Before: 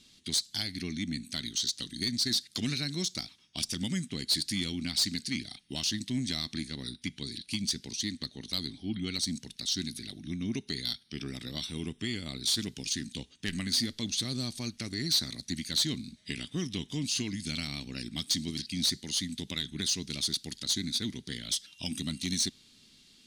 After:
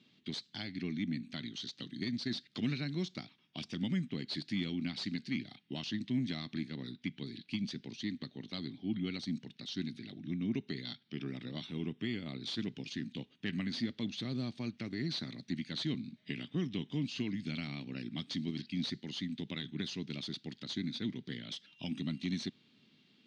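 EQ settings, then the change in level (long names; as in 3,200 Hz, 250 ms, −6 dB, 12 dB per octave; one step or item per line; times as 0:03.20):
high-pass filter 120 Hz 24 dB per octave
head-to-tape spacing loss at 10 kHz 36 dB
parametric band 2,800 Hz +5 dB 1.1 octaves
0.0 dB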